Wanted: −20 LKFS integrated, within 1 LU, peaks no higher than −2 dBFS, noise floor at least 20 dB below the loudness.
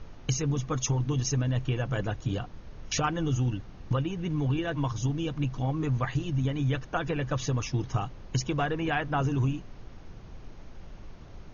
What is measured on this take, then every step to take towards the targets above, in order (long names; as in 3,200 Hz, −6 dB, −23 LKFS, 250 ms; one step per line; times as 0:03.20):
background noise floor −46 dBFS; target noise floor −50 dBFS; integrated loudness −30.0 LKFS; sample peak −15.0 dBFS; target loudness −20.0 LKFS
→ noise reduction from a noise print 6 dB
level +10 dB